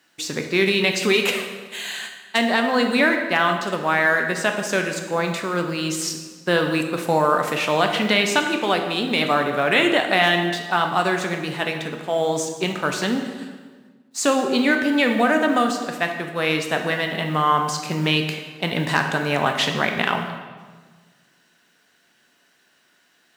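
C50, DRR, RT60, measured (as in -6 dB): 6.5 dB, 4.0 dB, 1.5 s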